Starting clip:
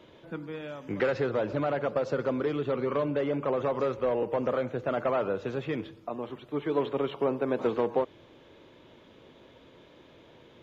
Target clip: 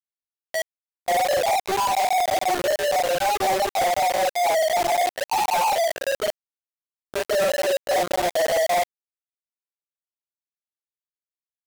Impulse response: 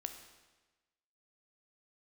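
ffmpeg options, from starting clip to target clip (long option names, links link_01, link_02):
-filter_complex "[0:a]afftfilt=real='re':imag='-im':win_size=4096:overlap=0.75,highpass=frequency=180:poles=1,afftfilt=real='re*gte(hypot(re,im),0.112)':imag='im*gte(hypot(re,im),0.112)':win_size=1024:overlap=0.75,lowpass=1200,acrossover=split=360|710[link_01][link_02][link_03];[link_01]acompressor=threshold=-53dB:ratio=8[link_04];[link_03]crystalizer=i=2:c=0[link_05];[link_04][link_02][link_05]amix=inputs=3:normalize=0,acrusher=bits=6:mix=0:aa=0.000001,atempo=0.67,apsyclip=29dB,asoftclip=type=tanh:threshold=-16.5dB,asetrate=59976,aresample=44100,volume=-2dB"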